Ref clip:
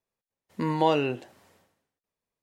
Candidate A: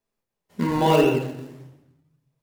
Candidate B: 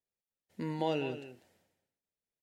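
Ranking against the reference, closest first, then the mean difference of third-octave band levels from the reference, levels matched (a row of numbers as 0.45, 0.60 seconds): B, A; 3.0, 7.5 decibels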